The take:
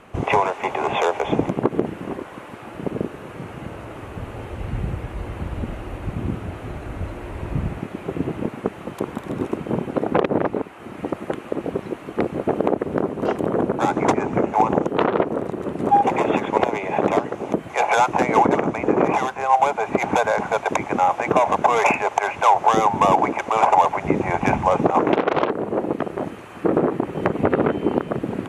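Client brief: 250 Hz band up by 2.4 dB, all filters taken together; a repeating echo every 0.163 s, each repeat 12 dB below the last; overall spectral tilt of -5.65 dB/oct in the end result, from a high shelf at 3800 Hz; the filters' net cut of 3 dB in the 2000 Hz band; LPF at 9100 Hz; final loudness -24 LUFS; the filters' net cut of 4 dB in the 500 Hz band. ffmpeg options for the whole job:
-af "lowpass=9.1k,equalizer=f=250:t=o:g=5.5,equalizer=f=500:t=o:g=-7,equalizer=f=2k:t=o:g=-5.5,highshelf=f=3.8k:g=7,aecho=1:1:163|326|489:0.251|0.0628|0.0157,volume=-1dB"

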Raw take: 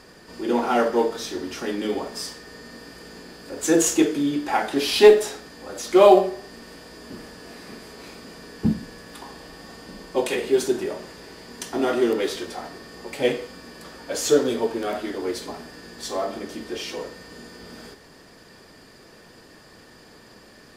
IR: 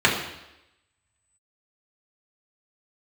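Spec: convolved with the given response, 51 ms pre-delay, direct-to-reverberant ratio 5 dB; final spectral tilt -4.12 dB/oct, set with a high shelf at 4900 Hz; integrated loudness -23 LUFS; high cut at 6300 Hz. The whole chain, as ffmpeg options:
-filter_complex "[0:a]lowpass=6.3k,highshelf=f=4.9k:g=-9,asplit=2[a][b];[1:a]atrim=start_sample=2205,adelay=51[c];[b][c]afir=irnorm=-1:irlink=0,volume=-25.5dB[d];[a][d]amix=inputs=2:normalize=0,volume=-1dB"

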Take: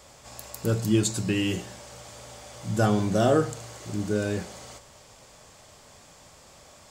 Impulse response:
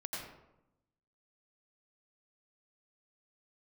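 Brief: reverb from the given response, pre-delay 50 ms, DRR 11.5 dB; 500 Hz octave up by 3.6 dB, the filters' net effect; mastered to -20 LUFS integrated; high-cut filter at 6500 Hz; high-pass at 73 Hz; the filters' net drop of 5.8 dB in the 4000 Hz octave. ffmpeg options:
-filter_complex "[0:a]highpass=73,lowpass=6.5k,equalizer=f=500:t=o:g=4.5,equalizer=f=4k:t=o:g=-8,asplit=2[a][b];[1:a]atrim=start_sample=2205,adelay=50[c];[b][c]afir=irnorm=-1:irlink=0,volume=-12.5dB[d];[a][d]amix=inputs=2:normalize=0,volume=4.5dB"

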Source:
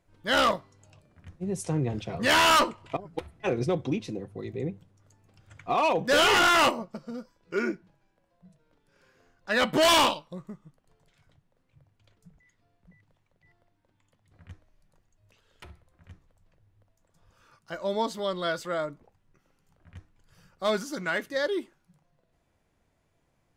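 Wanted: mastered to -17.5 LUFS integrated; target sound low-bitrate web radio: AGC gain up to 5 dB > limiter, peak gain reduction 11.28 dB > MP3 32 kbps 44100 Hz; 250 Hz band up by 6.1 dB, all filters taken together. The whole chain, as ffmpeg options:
-af "equalizer=f=250:t=o:g=8,dynaudnorm=m=5dB,alimiter=limit=-19dB:level=0:latency=1,volume=11dB" -ar 44100 -c:a libmp3lame -b:a 32k

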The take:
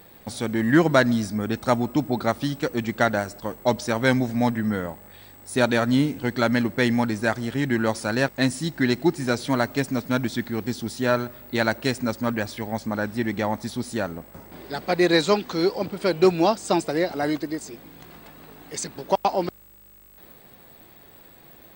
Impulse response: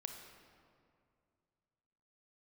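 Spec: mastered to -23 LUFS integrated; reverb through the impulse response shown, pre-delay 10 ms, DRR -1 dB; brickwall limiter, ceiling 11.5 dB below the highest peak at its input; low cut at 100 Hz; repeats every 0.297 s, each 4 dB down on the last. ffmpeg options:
-filter_complex "[0:a]highpass=100,alimiter=limit=-15.5dB:level=0:latency=1,aecho=1:1:297|594|891|1188|1485|1782|2079|2376|2673:0.631|0.398|0.25|0.158|0.0994|0.0626|0.0394|0.0249|0.0157,asplit=2[a][b];[1:a]atrim=start_sample=2205,adelay=10[c];[b][c]afir=irnorm=-1:irlink=0,volume=3.5dB[d];[a][d]amix=inputs=2:normalize=0"

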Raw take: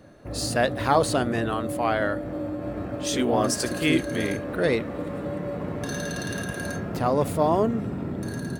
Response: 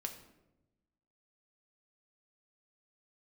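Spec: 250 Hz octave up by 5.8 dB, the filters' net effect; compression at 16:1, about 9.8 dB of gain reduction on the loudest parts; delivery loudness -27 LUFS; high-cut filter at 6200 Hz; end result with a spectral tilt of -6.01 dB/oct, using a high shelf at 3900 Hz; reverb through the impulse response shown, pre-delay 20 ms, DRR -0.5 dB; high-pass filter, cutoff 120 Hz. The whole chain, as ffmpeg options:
-filter_complex "[0:a]highpass=120,lowpass=6.2k,equalizer=f=250:t=o:g=7.5,highshelf=f=3.9k:g=-7,acompressor=threshold=-22dB:ratio=16,asplit=2[a][b];[1:a]atrim=start_sample=2205,adelay=20[c];[b][c]afir=irnorm=-1:irlink=0,volume=2dB[d];[a][d]amix=inputs=2:normalize=0,volume=-2.5dB"

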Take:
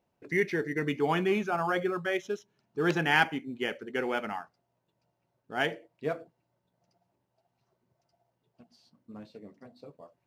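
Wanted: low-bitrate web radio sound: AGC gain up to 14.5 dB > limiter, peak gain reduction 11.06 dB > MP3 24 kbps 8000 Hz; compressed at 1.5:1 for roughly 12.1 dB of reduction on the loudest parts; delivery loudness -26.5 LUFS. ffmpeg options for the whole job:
-af "acompressor=threshold=-54dB:ratio=1.5,dynaudnorm=m=14.5dB,alimiter=level_in=9.5dB:limit=-24dB:level=0:latency=1,volume=-9.5dB,volume=19dB" -ar 8000 -c:a libmp3lame -b:a 24k

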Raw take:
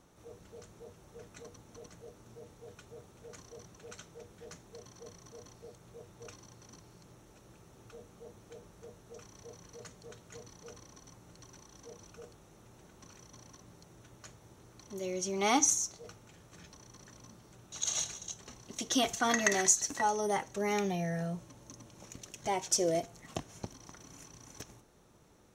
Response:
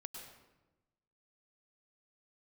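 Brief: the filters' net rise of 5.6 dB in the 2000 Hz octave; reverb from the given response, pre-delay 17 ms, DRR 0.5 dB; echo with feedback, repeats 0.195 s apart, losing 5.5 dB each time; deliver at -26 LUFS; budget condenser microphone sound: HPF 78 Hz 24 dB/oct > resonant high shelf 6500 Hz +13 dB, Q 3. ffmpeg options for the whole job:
-filter_complex "[0:a]equalizer=f=2k:t=o:g=7.5,aecho=1:1:195|390|585|780|975|1170|1365:0.531|0.281|0.149|0.079|0.0419|0.0222|0.0118,asplit=2[a][b];[1:a]atrim=start_sample=2205,adelay=17[c];[b][c]afir=irnorm=-1:irlink=0,volume=3.5dB[d];[a][d]amix=inputs=2:normalize=0,highpass=f=78:w=0.5412,highpass=f=78:w=1.3066,highshelf=f=6.5k:t=q:w=3:g=13,volume=-5dB"

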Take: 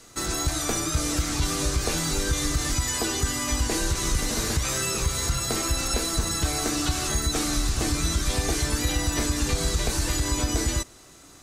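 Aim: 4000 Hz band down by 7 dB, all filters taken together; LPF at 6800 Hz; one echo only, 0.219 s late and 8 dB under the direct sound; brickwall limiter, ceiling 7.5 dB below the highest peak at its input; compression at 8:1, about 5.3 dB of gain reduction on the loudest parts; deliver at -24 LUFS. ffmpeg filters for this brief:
-af "lowpass=6.8k,equalizer=f=4k:t=o:g=-8,acompressor=threshold=-25dB:ratio=8,alimiter=limit=-23dB:level=0:latency=1,aecho=1:1:219:0.398,volume=8.5dB"

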